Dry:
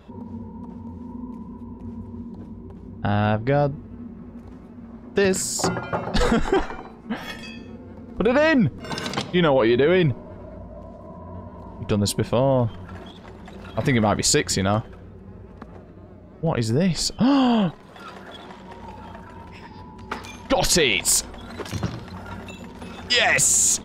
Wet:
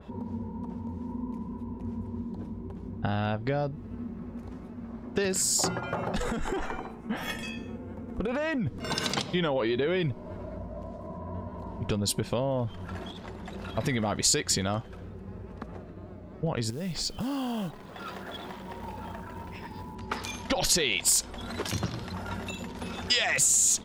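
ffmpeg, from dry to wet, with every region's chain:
ffmpeg -i in.wav -filter_complex "[0:a]asettb=1/sr,asplit=3[link_01][link_02][link_03];[link_01]atrim=end=5.804[link_04];[link_02]atrim=start=5.8:end=8.67,asetpts=PTS-STARTPTS,afade=type=in:duration=0.004:curve=qsin,afade=type=out:start_time=2.866:duration=0.004:curve=qsin,equalizer=frequency=4500:width_type=o:width=0.59:gain=-10.5,acompressor=threshold=-22dB:ratio=12:attack=3.2:release=140:knee=1:detection=peak,asoftclip=type=hard:threshold=-19.5dB[link_05];[link_03]atrim=start=8.666[link_06];[link_04][link_05]acrossfade=duration=0.004:curve1=hsin:curve2=qsin[link_07];[link_07][link_06]acrossfade=duration=0.004:curve1=qsin:curve2=hsin,asettb=1/sr,asplit=3[link_08][link_09][link_10];[link_08]atrim=end=16.704[link_11];[link_09]atrim=start=16.7:end=19.95,asetpts=PTS-STARTPTS,afade=type=in:duration=0.004:curve=qsin,afade=type=out:start_time=3.246:duration=0.004:curve=qsin,equalizer=frequency=12000:width_type=o:width=1.5:gain=-9.5,acompressor=threshold=-33dB:ratio=3:attack=3.2:release=140:knee=1:detection=peak,acrusher=bits=6:mode=log:mix=0:aa=0.000001[link_12];[link_10]atrim=start=19.946[link_13];[link_11][link_12]acrossfade=duration=0.004:curve1=hsin:curve2=qsin[link_14];[link_14][link_13]acrossfade=duration=0.004:curve1=qsin:curve2=hsin,acompressor=threshold=-28dB:ratio=3,adynamicequalizer=threshold=0.00631:dfrequency=2700:dqfactor=0.7:tfrequency=2700:tqfactor=0.7:attack=5:release=100:ratio=0.375:range=2.5:mode=boostabove:tftype=highshelf" out.wav

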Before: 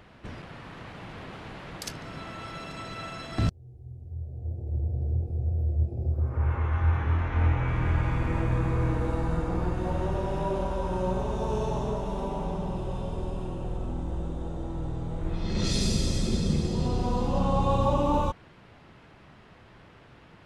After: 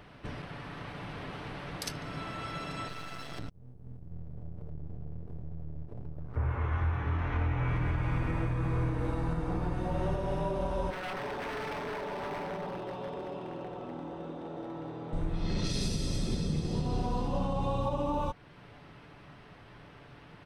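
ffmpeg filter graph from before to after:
ffmpeg -i in.wav -filter_complex "[0:a]asettb=1/sr,asplit=3[link_01][link_02][link_03];[link_01]atrim=end=2.884[link_04];[link_02]atrim=start=2.88:end=6.36,asetpts=PTS-STARTPTS,afade=type=in:duration=0.004:curve=qsin,afade=type=out:start_time=3.476:duration=0.004:curve=qsin,acompressor=threshold=-34dB:ratio=6:attack=3.2:release=140:knee=1:detection=peak,aeval=exprs='max(val(0),0)':channel_layout=same[link_05];[link_03]atrim=start=6.356[link_06];[link_04][link_05]acrossfade=duration=0.004:curve1=hsin:curve2=qsin[link_07];[link_07][link_06]acrossfade=duration=0.004:curve1=qsin:curve2=hsin,asettb=1/sr,asplit=3[link_08][link_09][link_10];[link_08]atrim=end=10.904[link_11];[link_09]atrim=start=10.9:end=15.13,asetpts=PTS-STARTPTS,afade=type=in:duration=0.004:curve=qsin,afade=type=out:start_time=4.226:duration=0.004:curve=qsin,highpass=280,lowpass=3800,aeval=exprs='0.0237*(abs(mod(val(0)/0.0237+3,4)-2)-1)':channel_layout=same[link_12];[link_10]atrim=start=15.126[link_13];[link_11][link_12]acrossfade=duration=0.004:curve1=hsin:curve2=qsin[link_14];[link_14][link_13]acrossfade=duration=0.004:curve1=qsin:curve2=hsin,bandreject=frequency=7000:width=6.3,aecho=1:1:6.9:0.31,alimiter=limit=-22dB:level=0:latency=1:release=332" out.wav

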